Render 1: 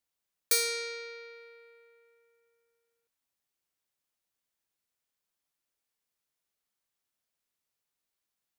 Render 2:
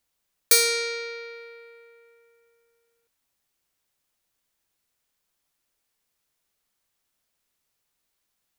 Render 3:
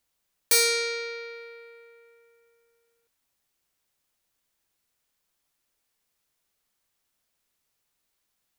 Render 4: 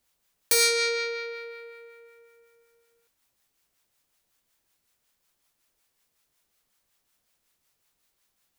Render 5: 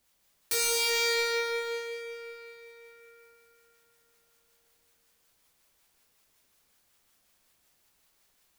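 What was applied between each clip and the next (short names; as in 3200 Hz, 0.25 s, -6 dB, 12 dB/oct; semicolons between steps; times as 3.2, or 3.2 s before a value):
low shelf 61 Hz +7 dB; gain +8.5 dB
hard clip -15.5 dBFS, distortion -10 dB
in parallel at +0.5 dB: limiter -24 dBFS, peak gain reduction 8.5 dB; on the sum: harmonic tremolo 5.4 Hz, depth 50%, crossover 740 Hz
overloaded stage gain 28.5 dB; reverb RT60 3.8 s, pre-delay 73 ms, DRR -0.5 dB; gain +2 dB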